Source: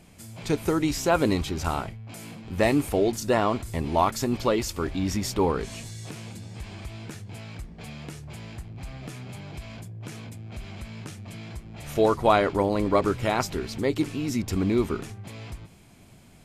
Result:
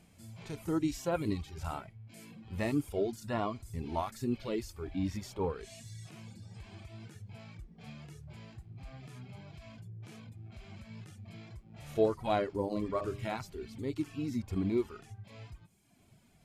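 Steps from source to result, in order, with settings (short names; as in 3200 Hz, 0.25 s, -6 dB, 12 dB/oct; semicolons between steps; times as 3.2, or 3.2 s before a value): 12.61–13.37 de-hum 50.6 Hz, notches 24; harmonic-percussive split percussive -16 dB; reverb removal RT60 1.1 s; gain -4.5 dB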